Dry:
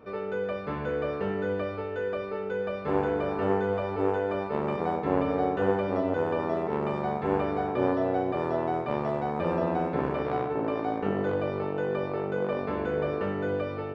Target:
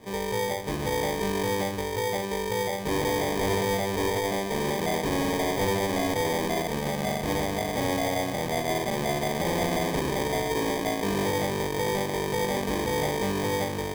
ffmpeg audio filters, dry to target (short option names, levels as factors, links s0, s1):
-filter_complex "[0:a]asettb=1/sr,asplit=3[s0][s1][s2];[s0]atrim=end=6.624[s3];[s1]atrim=start=6.62:end=8.69,asetpts=PTS-STARTPTS,afade=t=in:d=0.004:c=qsin,afade=t=out:st=2.066:d=0.004:c=qsin,equalizer=f=380:w=4.4:g=-15[s4];[s2]atrim=start=8.686[s5];[s3][s4]acrossfade=d=0.004:c1=hsin:c2=qsin[s6];[s6][s5]acrossfade=d=0.004:c1=qsin:c2=hsin,acrusher=samples=32:mix=1:aa=0.000001,asoftclip=type=hard:threshold=0.0562,volume=1.41"